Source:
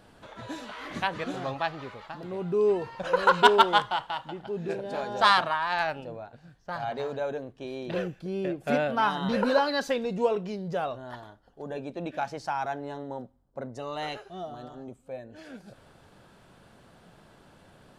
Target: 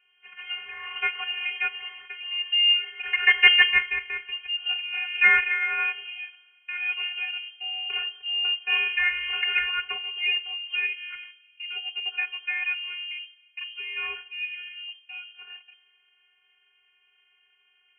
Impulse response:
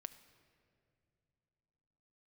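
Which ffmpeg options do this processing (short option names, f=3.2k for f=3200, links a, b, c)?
-filter_complex "[0:a]agate=range=-12dB:threshold=-46dB:ratio=16:detection=peak,asplit=2[a][b];[1:a]atrim=start_sample=2205,highshelf=f=6.9k:g=-7[c];[b][c]afir=irnorm=-1:irlink=0,volume=0.5dB[d];[a][d]amix=inputs=2:normalize=0,aeval=exprs='clip(val(0),-1,0.316)':c=same,afftfilt=real='hypot(re,im)*cos(PI*b)':imag='0':win_size=512:overlap=0.75,lowpass=f=2.7k:t=q:w=0.5098,lowpass=f=2.7k:t=q:w=0.6013,lowpass=f=2.7k:t=q:w=0.9,lowpass=f=2.7k:t=q:w=2.563,afreqshift=-3200,lowshelf=f=440:g=-7.5,afreqshift=-40,volume=2.5dB"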